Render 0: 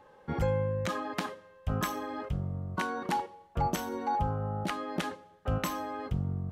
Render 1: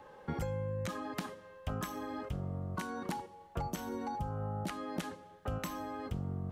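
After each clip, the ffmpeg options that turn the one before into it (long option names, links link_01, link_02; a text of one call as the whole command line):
ffmpeg -i in.wav -filter_complex "[0:a]acrossover=split=230|5600[link_01][link_02][link_03];[link_01]acompressor=threshold=-41dB:ratio=4[link_04];[link_02]acompressor=threshold=-44dB:ratio=4[link_05];[link_03]acompressor=threshold=-53dB:ratio=4[link_06];[link_04][link_05][link_06]amix=inputs=3:normalize=0,volume=3dB" out.wav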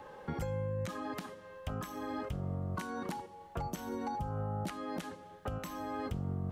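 ffmpeg -i in.wav -af "alimiter=level_in=7.5dB:limit=-24dB:level=0:latency=1:release=364,volume=-7.5dB,volume=4dB" out.wav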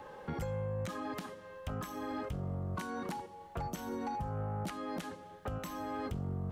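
ffmpeg -i in.wav -af "asoftclip=type=tanh:threshold=-30.5dB,volume=1dB" out.wav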